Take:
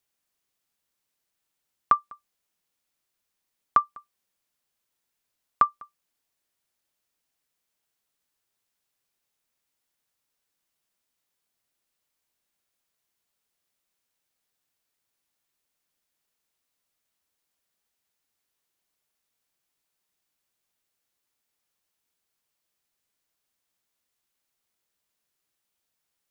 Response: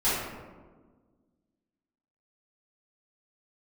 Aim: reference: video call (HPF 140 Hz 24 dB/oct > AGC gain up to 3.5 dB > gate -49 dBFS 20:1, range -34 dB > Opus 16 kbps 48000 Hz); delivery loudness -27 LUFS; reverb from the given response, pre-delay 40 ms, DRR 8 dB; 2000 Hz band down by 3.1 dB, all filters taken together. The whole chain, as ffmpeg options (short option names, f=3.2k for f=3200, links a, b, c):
-filter_complex "[0:a]equalizer=f=2k:t=o:g=-4.5,asplit=2[a][b];[1:a]atrim=start_sample=2205,adelay=40[c];[b][c]afir=irnorm=-1:irlink=0,volume=-21dB[d];[a][d]amix=inputs=2:normalize=0,highpass=f=140:w=0.5412,highpass=f=140:w=1.3066,dynaudnorm=m=3.5dB,agate=range=-34dB:threshold=-49dB:ratio=20,volume=1dB" -ar 48000 -c:a libopus -b:a 16k